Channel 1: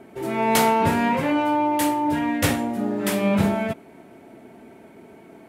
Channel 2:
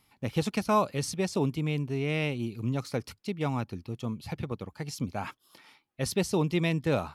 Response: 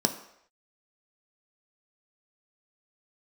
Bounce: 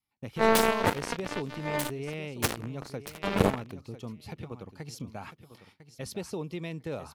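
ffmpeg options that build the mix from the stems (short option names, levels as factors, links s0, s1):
-filter_complex "[0:a]equalizer=f=1800:w=6:g=-3,flanger=delay=8.4:depth=2.2:regen=61:speed=0.38:shape=sinusoidal,acrusher=bits=2:mix=0:aa=0.5,volume=1[s0];[1:a]acompressor=threshold=0.0251:ratio=3,volume=0.631,asplit=2[s1][s2];[s2]volume=0.237,aecho=0:1:1000|2000|3000|4000:1|0.22|0.0484|0.0106[s3];[s0][s1][s3]amix=inputs=3:normalize=0,agate=range=0.141:threshold=0.00141:ratio=16:detection=peak,adynamicequalizer=threshold=0.00794:dfrequency=460:dqfactor=1.8:tfrequency=460:tqfactor=1.8:attack=5:release=100:ratio=0.375:range=2.5:mode=boostabove:tftype=bell"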